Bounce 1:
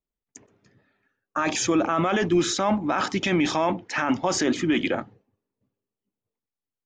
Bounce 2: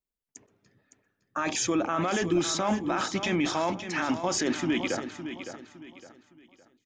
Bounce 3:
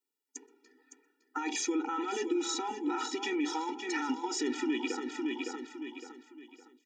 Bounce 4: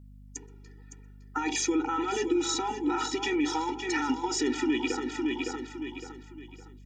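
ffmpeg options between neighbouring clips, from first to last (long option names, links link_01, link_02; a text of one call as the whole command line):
ffmpeg -i in.wav -af "highshelf=frequency=5900:gain=5.5,aecho=1:1:561|1122|1683|2244:0.316|0.104|0.0344|0.0114,volume=-5dB" out.wav
ffmpeg -i in.wav -af "acompressor=threshold=-35dB:ratio=4,afftfilt=real='re*eq(mod(floor(b*sr/1024/250),2),1)':imag='im*eq(mod(floor(b*sr/1024/250),2),1)':win_size=1024:overlap=0.75,volume=6dB" out.wav
ffmpeg -i in.wav -af "aeval=exprs='val(0)+0.00224*(sin(2*PI*50*n/s)+sin(2*PI*2*50*n/s)/2+sin(2*PI*3*50*n/s)/3+sin(2*PI*4*50*n/s)/4+sin(2*PI*5*50*n/s)/5)':channel_layout=same,volume=4.5dB" out.wav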